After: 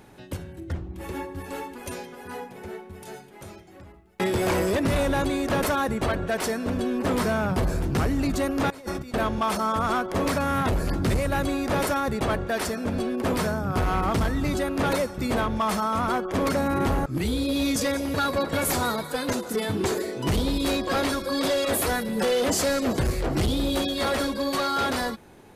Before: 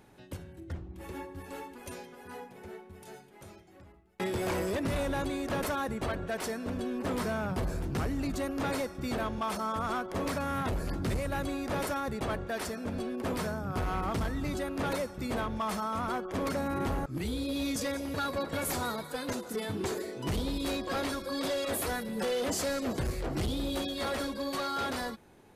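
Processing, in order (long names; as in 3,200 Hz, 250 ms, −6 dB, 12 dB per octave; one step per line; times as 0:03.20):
0:08.70–0:09.14: compressor whose output falls as the input rises −41 dBFS, ratio −0.5
level +8 dB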